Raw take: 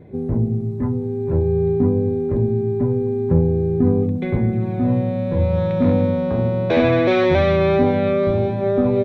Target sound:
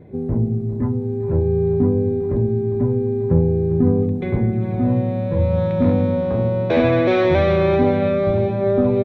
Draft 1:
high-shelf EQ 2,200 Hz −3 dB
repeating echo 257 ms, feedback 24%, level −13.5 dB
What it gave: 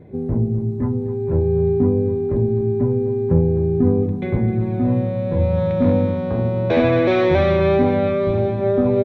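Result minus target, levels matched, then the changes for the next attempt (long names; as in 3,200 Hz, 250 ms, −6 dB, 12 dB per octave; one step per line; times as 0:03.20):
echo 145 ms early
change: repeating echo 402 ms, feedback 24%, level −13.5 dB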